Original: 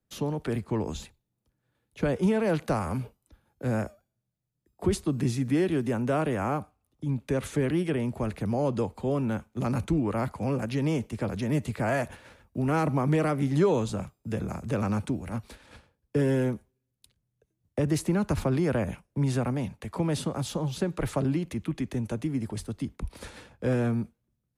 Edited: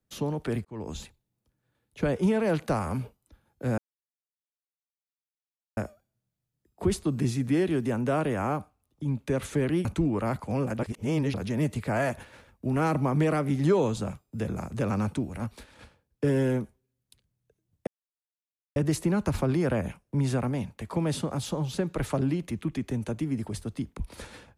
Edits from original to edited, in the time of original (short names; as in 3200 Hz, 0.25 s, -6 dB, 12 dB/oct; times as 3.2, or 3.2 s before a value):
0.65–1 fade in
3.78 insert silence 1.99 s
7.86–9.77 cut
10.71–11.26 reverse
17.79 insert silence 0.89 s